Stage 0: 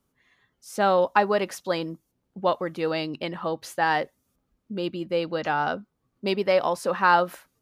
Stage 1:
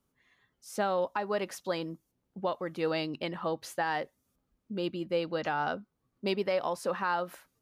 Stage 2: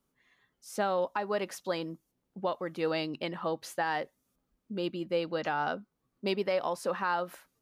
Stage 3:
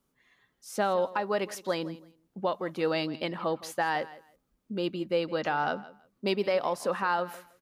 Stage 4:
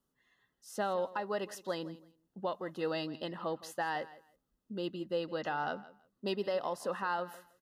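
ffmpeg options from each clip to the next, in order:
ffmpeg -i in.wav -af "alimiter=limit=-16dB:level=0:latency=1:release=307,volume=-4dB" out.wav
ffmpeg -i in.wav -af "equalizer=frequency=86:width_type=o:width=0.77:gain=-8" out.wav
ffmpeg -i in.wav -af "aecho=1:1:164|328:0.126|0.0239,volume=2.5dB" out.wav
ffmpeg -i in.wav -af "asuperstop=centerf=2300:order=20:qfactor=5.9,volume=-6.5dB" out.wav

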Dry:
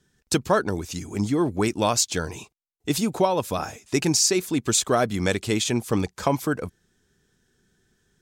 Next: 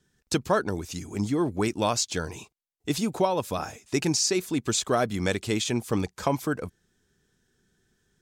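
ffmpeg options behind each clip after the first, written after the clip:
ffmpeg -i in.wav -filter_complex "[0:a]acrossover=split=7600[link_01][link_02];[link_02]acompressor=threshold=-35dB:ratio=4:attack=1:release=60[link_03];[link_01][link_03]amix=inputs=2:normalize=0,volume=-3dB" out.wav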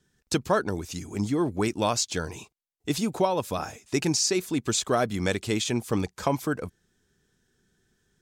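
ffmpeg -i in.wav -af anull out.wav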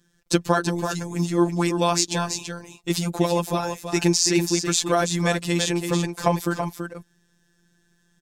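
ffmpeg -i in.wav -af "afftfilt=real='hypot(re,im)*cos(PI*b)':imag='0':win_size=1024:overlap=0.75,aecho=1:1:332:0.447,volume=7.5dB" out.wav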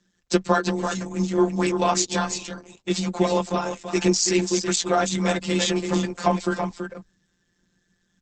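ffmpeg -i in.wav -af "afreqshift=16" -ar 48000 -c:a libopus -b:a 10k out.opus

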